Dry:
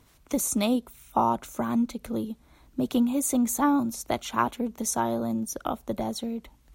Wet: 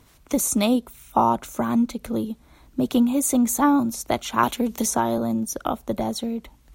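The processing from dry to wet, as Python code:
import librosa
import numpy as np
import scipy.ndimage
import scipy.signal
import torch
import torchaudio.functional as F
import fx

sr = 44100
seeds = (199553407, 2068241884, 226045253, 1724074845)

y = fx.band_squash(x, sr, depth_pct=70, at=(4.43, 5.18))
y = y * librosa.db_to_amplitude(4.5)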